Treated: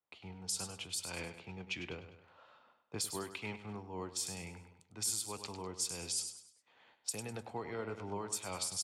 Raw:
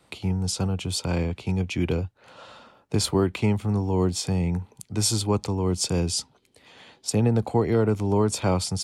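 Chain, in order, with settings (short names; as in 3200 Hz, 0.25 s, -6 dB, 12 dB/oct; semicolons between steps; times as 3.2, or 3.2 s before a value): gate -52 dBFS, range -15 dB; pre-emphasis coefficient 0.97; low-pass opened by the level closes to 1100 Hz, open at -29 dBFS; dynamic EQ 4200 Hz, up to -5 dB, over -42 dBFS, Q 0.77; in parallel at 0 dB: compressor, threshold -41 dBFS, peak gain reduction 17 dB; on the sum: limiter -23.5 dBFS, peak gain reduction 11 dB; flange 0.88 Hz, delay 1.9 ms, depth 8.8 ms, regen +89%; on a send: feedback echo 0.101 s, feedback 39%, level -10 dB; on the sum: noise-modulated level, depth 55%; gain +6 dB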